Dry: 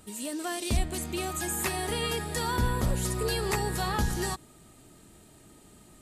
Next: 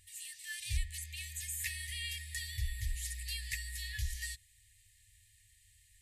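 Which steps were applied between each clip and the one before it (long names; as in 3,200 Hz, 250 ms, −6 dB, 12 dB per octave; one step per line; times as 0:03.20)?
parametric band 1,400 Hz +12 dB 0.49 octaves
brick-wall band-stop 110–1,700 Hz
level −7 dB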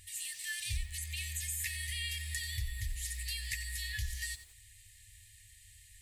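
downward compressor 2.5 to 1, threshold −45 dBFS, peak gain reduction 11.5 dB
feedback echo at a low word length 90 ms, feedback 35%, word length 10 bits, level −12.5 dB
level +7.5 dB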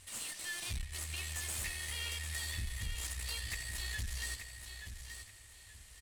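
variable-slope delta modulation 64 kbit/s
tube saturation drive 36 dB, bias 0.6
repeating echo 879 ms, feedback 27%, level −8 dB
level +2 dB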